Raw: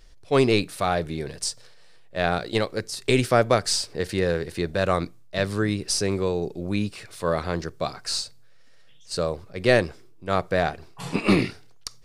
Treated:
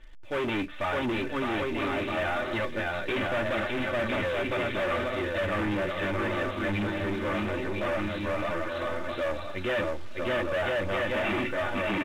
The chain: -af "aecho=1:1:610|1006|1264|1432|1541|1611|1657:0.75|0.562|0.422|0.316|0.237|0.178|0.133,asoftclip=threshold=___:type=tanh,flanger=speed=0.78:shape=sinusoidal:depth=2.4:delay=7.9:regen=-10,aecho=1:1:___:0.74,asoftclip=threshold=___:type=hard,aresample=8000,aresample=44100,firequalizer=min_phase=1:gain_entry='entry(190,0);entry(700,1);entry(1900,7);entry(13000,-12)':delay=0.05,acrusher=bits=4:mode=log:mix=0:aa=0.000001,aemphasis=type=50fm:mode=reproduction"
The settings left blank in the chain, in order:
0.112, 3.4, 0.0422